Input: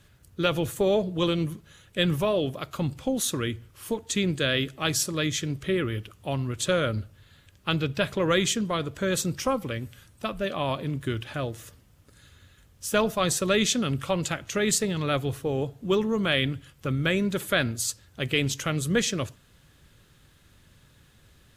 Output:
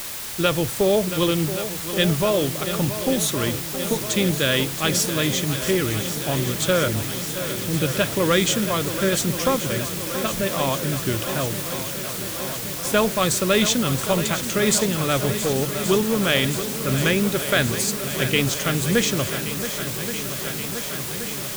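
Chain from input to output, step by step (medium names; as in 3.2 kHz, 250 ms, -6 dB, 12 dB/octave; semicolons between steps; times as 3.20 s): 6.88–7.82 s: steep low-pass 520 Hz; word length cut 6-bit, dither triangular; shuffle delay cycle 1126 ms, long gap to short 1.5:1, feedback 72%, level -11.5 dB; trim +4 dB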